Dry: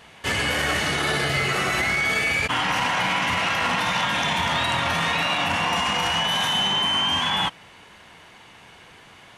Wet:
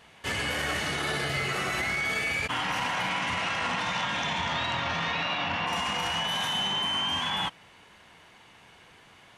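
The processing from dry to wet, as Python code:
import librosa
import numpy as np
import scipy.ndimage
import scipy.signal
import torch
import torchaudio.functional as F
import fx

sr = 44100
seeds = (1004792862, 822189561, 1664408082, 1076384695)

y = fx.lowpass(x, sr, hz=fx.line((3.09, 11000.0), (5.66, 4800.0)), slope=24, at=(3.09, 5.66), fade=0.02)
y = F.gain(torch.from_numpy(y), -6.5).numpy()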